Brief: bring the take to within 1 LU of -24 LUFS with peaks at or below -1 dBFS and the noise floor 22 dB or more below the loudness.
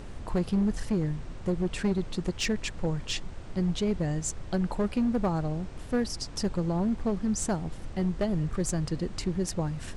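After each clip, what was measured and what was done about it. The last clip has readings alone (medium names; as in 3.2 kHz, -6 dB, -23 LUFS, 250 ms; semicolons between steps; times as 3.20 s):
clipped samples 1.7%; clipping level -21.0 dBFS; noise floor -41 dBFS; noise floor target -53 dBFS; loudness -30.5 LUFS; peak level -21.0 dBFS; loudness target -24.0 LUFS
-> clip repair -21 dBFS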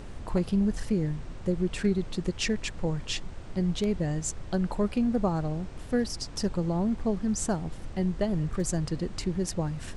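clipped samples 0.0%; noise floor -41 dBFS; noise floor target -52 dBFS
-> noise print and reduce 11 dB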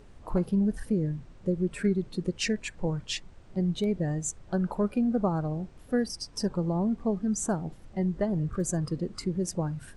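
noise floor -51 dBFS; noise floor target -52 dBFS
-> noise print and reduce 6 dB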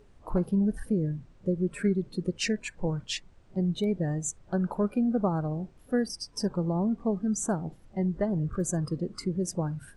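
noise floor -56 dBFS; loudness -30.0 LUFS; peak level -15.0 dBFS; loudness target -24.0 LUFS
-> trim +6 dB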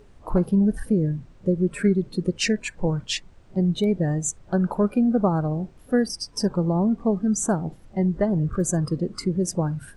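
loudness -24.0 LUFS; peak level -9.0 dBFS; noise floor -50 dBFS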